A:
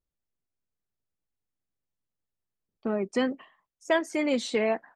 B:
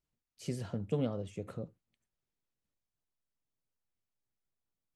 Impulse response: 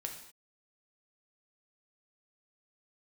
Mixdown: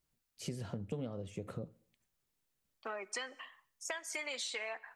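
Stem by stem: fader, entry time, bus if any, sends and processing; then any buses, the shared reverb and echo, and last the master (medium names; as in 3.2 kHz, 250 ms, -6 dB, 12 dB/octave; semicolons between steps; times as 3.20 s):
+3.0 dB, 0.00 s, send -14.5 dB, high-pass 1.1 kHz 12 dB/octave; treble shelf 5.7 kHz +5.5 dB; compression, threshold -34 dBFS, peak gain reduction 10 dB
+3.0 dB, 0.00 s, send -20 dB, none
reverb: on, pre-delay 3 ms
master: compression 4:1, threshold -38 dBFS, peak gain reduction 12.5 dB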